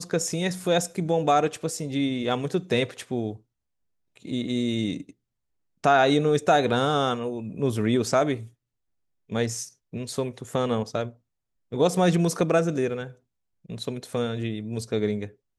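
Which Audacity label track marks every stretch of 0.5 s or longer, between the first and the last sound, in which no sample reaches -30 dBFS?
3.330000	4.250000	silence
5.010000	5.840000	silence
8.370000	9.320000	silence
11.080000	11.720000	silence
13.070000	13.700000	silence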